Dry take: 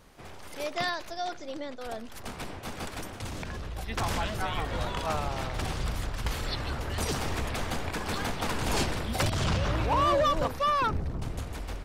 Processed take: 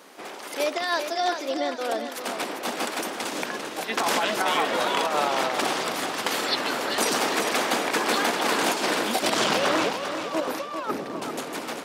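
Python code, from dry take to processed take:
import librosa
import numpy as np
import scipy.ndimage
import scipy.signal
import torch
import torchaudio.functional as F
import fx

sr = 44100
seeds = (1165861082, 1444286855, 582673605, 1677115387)

y = scipy.signal.sosfilt(scipy.signal.butter(4, 260.0, 'highpass', fs=sr, output='sos'), x)
y = fx.over_compress(y, sr, threshold_db=-32.0, ratio=-0.5)
y = fx.echo_feedback(y, sr, ms=395, feedback_pct=42, wet_db=-8)
y = y * 10.0 ** (8.0 / 20.0)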